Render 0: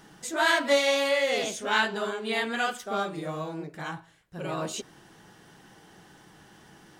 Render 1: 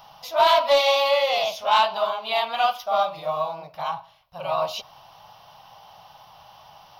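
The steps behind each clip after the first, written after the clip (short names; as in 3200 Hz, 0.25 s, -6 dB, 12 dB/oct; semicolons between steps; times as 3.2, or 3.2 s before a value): EQ curve 120 Hz 0 dB, 260 Hz -18 dB, 400 Hz -17 dB, 610 Hz +11 dB, 1100 Hz +12 dB, 1700 Hz -9 dB, 2600 Hz +7 dB, 5500 Hz +6 dB, 8000 Hz -25 dB, 12000 Hz +7 dB; soft clip -8 dBFS, distortion -21 dB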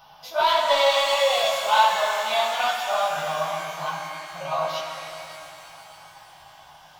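chorus voices 4, 0.44 Hz, delay 15 ms, depth 3.8 ms; small resonant body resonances 1500/3400 Hz, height 9 dB; shimmer reverb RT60 3.2 s, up +12 st, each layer -8 dB, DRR 2 dB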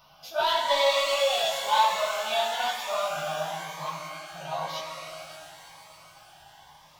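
cascading phaser rising 1 Hz; gain -2 dB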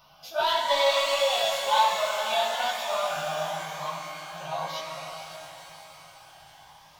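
diffused feedback echo 0.477 s, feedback 43%, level -10.5 dB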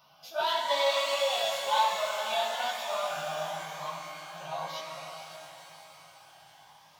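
HPF 120 Hz 12 dB/oct; gain -4 dB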